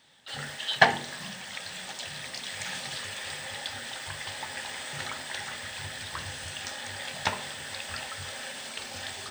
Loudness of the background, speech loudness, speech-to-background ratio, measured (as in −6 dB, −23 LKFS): −33.0 LKFS, −36.0 LKFS, −3.0 dB